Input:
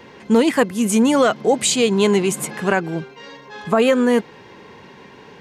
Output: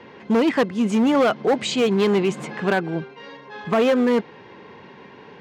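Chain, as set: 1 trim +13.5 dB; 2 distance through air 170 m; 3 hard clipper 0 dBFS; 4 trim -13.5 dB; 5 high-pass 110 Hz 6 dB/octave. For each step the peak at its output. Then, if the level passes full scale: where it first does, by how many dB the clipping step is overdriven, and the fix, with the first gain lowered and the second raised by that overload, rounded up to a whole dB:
+9.5 dBFS, +9.0 dBFS, 0.0 dBFS, -13.5 dBFS, -10.0 dBFS; step 1, 9.0 dB; step 1 +4.5 dB, step 4 -4.5 dB

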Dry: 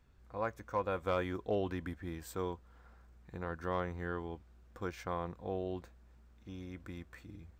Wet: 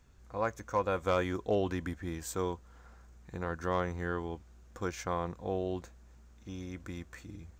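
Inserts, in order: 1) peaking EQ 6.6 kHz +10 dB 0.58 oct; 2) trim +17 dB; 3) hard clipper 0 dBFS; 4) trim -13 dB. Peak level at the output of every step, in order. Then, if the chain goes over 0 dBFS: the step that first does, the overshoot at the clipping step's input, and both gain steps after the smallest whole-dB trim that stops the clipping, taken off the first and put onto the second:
-22.5 dBFS, -5.5 dBFS, -5.5 dBFS, -18.5 dBFS; nothing clips

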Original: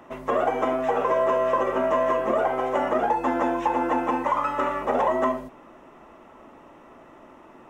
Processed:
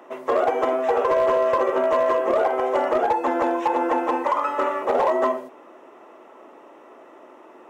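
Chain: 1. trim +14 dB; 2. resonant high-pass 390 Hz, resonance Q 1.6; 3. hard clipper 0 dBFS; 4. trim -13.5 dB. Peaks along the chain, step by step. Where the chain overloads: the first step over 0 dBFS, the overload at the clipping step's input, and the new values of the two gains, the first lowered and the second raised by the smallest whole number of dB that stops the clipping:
+3.0 dBFS, +5.5 dBFS, 0.0 dBFS, -13.5 dBFS; step 1, 5.5 dB; step 1 +8 dB, step 4 -7.5 dB

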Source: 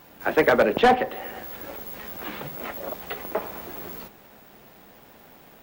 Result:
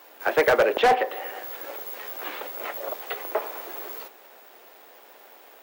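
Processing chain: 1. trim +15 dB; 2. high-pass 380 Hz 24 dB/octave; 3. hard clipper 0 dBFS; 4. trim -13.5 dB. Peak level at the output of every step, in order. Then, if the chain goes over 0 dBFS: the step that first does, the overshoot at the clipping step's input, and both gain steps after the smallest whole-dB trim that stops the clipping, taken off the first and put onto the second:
+4.5 dBFS, +9.0 dBFS, 0.0 dBFS, -13.5 dBFS; step 1, 9.0 dB; step 1 +6 dB, step 4 -4.5 dB

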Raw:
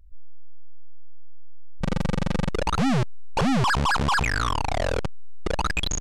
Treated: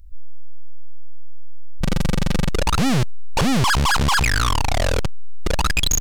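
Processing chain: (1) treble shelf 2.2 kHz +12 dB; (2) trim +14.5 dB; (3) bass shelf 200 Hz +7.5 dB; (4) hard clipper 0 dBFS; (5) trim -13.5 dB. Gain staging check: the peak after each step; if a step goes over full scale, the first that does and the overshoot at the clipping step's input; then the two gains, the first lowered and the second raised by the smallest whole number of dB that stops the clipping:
-8.5 dBFS, +6.0 dBFS, +7.0 dBFS, 0.0 dBFS, -13.5 dBFS; step 2, 7.0 dB; step 2 +7.5 dB, step 5 -6.5 dB

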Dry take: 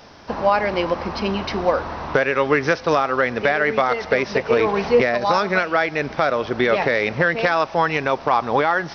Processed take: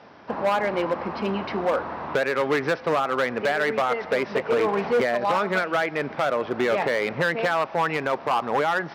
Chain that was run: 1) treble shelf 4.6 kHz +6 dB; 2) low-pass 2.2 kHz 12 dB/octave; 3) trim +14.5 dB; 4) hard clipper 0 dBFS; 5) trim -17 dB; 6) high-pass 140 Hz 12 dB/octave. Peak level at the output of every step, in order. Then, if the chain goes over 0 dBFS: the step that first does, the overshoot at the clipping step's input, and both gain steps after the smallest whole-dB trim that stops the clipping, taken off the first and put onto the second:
-4.5 dBFS, -5.0 dBFS, +9.5 dBFS, 0.0 dBFS, -17.0 dBFS, -11.5 dBFS; step 3, 9.5 dB; step 3 +4.5 dB, step 5 -7 dB

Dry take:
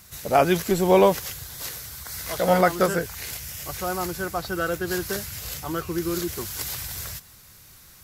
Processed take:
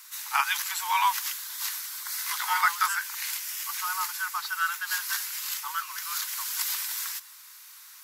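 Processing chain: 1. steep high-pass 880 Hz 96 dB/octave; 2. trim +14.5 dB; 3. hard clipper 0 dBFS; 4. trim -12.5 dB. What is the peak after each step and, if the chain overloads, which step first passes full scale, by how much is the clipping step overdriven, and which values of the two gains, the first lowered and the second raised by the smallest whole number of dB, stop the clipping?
-11.5 dBFS, +3.0 dBFS, 0.0 dBFS, -12.5 dBFS; step 2, 3.0 dB; step 2 +11.5 dB, step 4 -9.5 dB

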